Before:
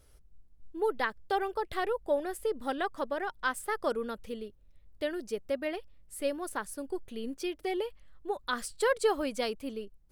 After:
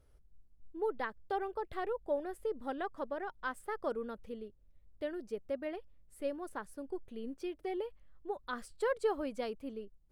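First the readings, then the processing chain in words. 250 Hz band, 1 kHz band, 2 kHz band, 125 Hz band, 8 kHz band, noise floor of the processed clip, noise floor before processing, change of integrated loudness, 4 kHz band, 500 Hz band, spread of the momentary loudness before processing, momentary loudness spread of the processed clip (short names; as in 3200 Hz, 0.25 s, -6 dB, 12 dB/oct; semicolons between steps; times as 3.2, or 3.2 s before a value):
-4.5 dB, -6.0 dB, -8.5 dB, n/a, -15.5 dB, -64 dBFS, -59 dBFS, -5.5 dB, -12.5 dB, -5.0 dB, 10 LU, 9 LU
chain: high shelf 2300 Hz -11.5 dB; gain -4.5 dB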